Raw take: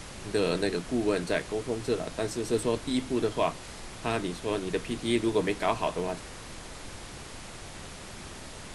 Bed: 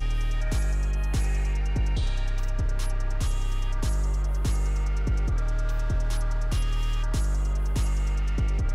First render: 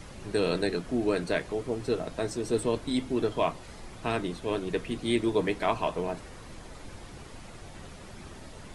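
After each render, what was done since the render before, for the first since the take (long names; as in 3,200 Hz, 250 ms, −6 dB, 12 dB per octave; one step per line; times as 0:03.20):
broadband denoise 8 dB, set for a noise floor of −44 dBFS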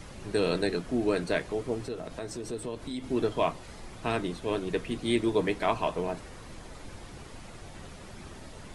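0:01.86–0:03.04: downward compressor 2.5 to 1, threshold −35 dBFS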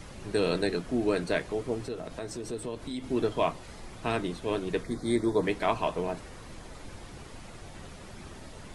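0:04.83–0:05.43: Butterworth band-reject 2,800 Hz, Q 1.6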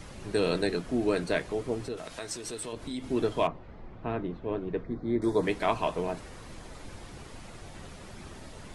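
0:01.97–0:02.73: tilt shelving filter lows −6.5 dB, about 870 Hz
0:03.47–0:05.22: head-to-tape spacing loss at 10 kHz 45 dB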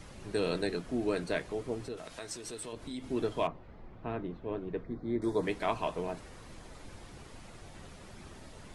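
level −4.5 dB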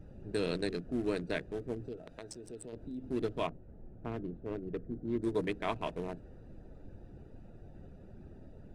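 adaptive Wiener filter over 41 samples
dynamic equaliser 770 Hz, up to −4 dB, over −44 dBFS, Q 1.1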